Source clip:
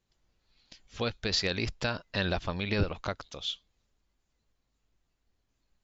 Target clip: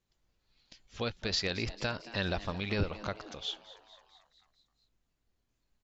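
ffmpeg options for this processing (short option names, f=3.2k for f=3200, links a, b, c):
-filter_complex "[0:a]asplit=7[a][b][c][d][e][f][g];[b]adelay=223,afreqshift=110,volume=-17dB[h];[c]adelay=446,afreqshift=220,volume=-21.3dB[i];[d]adelay=669,afreqshift=330,volume=-25.6dB[j];[e]adelay=892,afreqshift=440,volume=-29.9dB[k];[f]adelay=1115,afreqshift=550,volume=-34.2dB[l];[g]adelay=1338,afreqshift=660,volume=-38.5dB[m];[a][h][i][j][k][l][m]amix=inputs=7:normalize=0,volume=-3dB"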